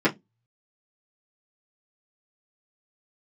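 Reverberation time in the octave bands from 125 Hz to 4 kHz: 0.40 s, 0.25 s, 0.20 s, 0.15 s, 0.15 s, 0.15 s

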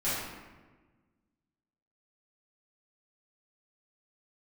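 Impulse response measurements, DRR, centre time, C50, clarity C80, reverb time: -13.0 dB, 92 ms, -1.5 dB, 1.5 dB, 1.3 s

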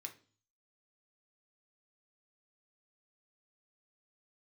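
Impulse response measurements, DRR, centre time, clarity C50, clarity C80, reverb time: 4.0 dB, 9 ms, 14.0 dB, 20.0 dB, 0.40 s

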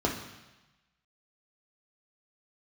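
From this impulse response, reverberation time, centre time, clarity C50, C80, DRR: 1.1 s, 27 ms, 7.5 dB, 10.0 dB, 0.5 dB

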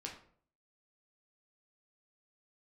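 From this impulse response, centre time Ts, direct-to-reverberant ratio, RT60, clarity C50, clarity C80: 24 ms, -1.5 dB, 0.55 s, 7.5 dB, 11.5 dB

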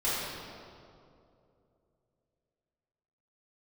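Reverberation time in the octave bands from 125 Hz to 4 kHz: 3.3 s, 2.9 s, 3.0 s, 2.3 s, 1.7 s, 1.5 s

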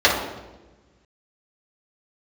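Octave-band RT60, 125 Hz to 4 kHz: 1.9 s, 1.6 s, 1.3 s, 1.0 s, 0.90 s, 0.85 s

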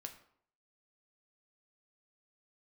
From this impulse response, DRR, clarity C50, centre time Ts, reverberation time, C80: 4.5 dB, 11.0 dB, 12 ms, 0.65 s, 14.0 dB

